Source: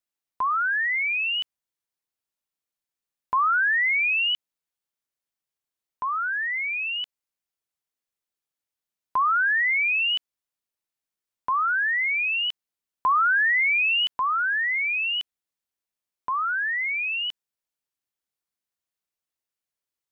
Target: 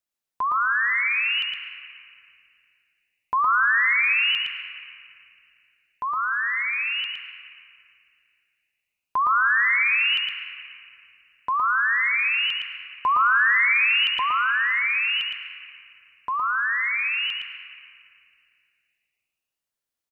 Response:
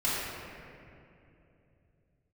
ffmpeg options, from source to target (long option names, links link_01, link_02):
-filter_complex "[0:a]aecho=1:1:114:0.631,asplit=2[link_01][link_02];[1:a]atrim=start_sample=2205,adelay=104[link_03];[link_02][link_03]afir=irnorm=-1:irlink=0,volume=-19dB[link_04];[link_01][link_04]amix=inputs=2:normalize=0"